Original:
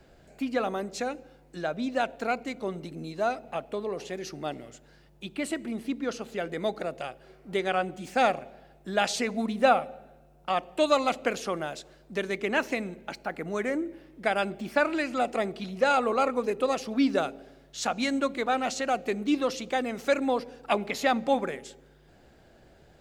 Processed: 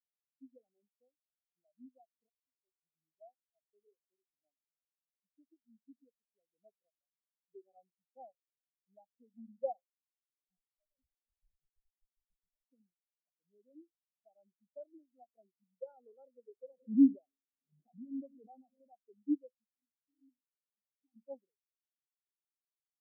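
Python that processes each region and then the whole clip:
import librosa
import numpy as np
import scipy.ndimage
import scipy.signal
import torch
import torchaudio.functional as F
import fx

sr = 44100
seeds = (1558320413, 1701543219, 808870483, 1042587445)

y = fx.chain(x, sr, fx.halfwave_gain(db=-3.0),
    fx.low_shelf(hz=430.0, db=-11.5),
    fx.over_compress(threshold_db=-36.0, ratio=-0.5), at=(2.29, 2.82))
y = fx.chain(y, sr, fx.highpass(hz=750.0, slope=12),
    fx.echo_single(ms=934, db=-13.5),
    fx.schmitt(flips_db=-29.5), at=(9.92, 12.66))
y = fx.chain(y, sr, fx.zero_step(step_db=-32.5),
    fx.cheby1_bandpass(low_hz=150.0, high_hz=1700.0, order=5),
    fx.pre_swell(db_per_s=44.0), at=(16.73, 18.89))
y = fx.chain(y, sr, fx.vowel_filter(vowel='u'),
    fx.low_shelf(hz=160.0, db=5.0),
    fx.sustainer(db_per_s=81.0), at=(19.67, 21.16))
y = scipy.signal.sosfilt(scipy.signal.butter(2, 1100.0, 'lowpass', fs=sr, output='sos'), y)
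y = fx.low_shelf(y, sr, hz=330.0, db=5.0)
y = fx.spectral_expand(y, sr, expansion=4.0)
y = F.gain(torch.from_numpy(y), -6.0).numpy()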